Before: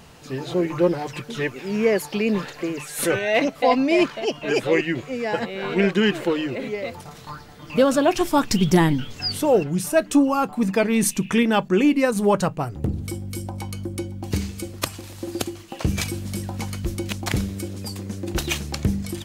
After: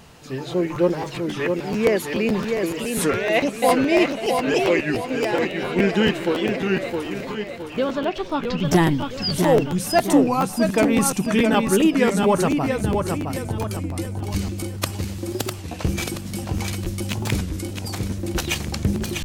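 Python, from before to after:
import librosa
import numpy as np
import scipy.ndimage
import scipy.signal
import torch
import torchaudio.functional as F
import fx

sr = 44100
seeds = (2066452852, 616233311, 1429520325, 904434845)

p1 = fx.ladder_lowpass(x, sr, hz=4800.0, resonance_pct=25, at=(7.32, 8.65))
p2 = p1 + fx.echo_feedback(p1, sr, ms=665, feedback_pct=42, wet_db=-5, dry=0)
p3 = fx.buffer_crackle(p2, sr, first_s=0.74, period_s=0.14, block=512, kind='repeat')
y = fx.record_warp(p3, sr, rpm=33.33, depth_cents=160.0)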